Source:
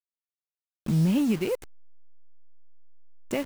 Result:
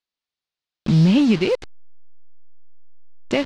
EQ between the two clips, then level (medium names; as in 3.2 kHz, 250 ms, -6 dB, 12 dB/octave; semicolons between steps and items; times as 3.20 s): resonant low-pass 4.3 kHz, resonance Q 1.9; +8.0 dB